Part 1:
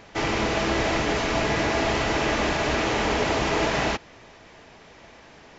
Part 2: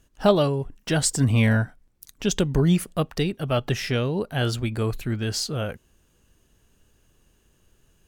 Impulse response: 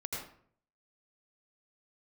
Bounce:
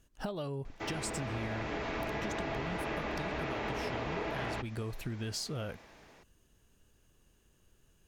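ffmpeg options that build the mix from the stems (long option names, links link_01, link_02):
-filter_complex "[0:a]dynaudnorm=framelen=460:gausssize=5:maxgain=6.5dB,bandreject=frequency=3000:width=24,acrossover=split=3800[link_01][link_02];[link_02]acompressor=threshold=-47dB:ratio=4:attack=1:release=60[link_03];[link_01][link_03]amix=inputs=2:normalize=0,adelay=650,volume=-12dB[link_04];[1:a]acompressor=threshold=-27dB:ratio=6,volume=-5.5dB[link_05];[link_04][link_05]amix=inputs=2:normalize=0,acompressor=threshold=-33dB:ratio=6"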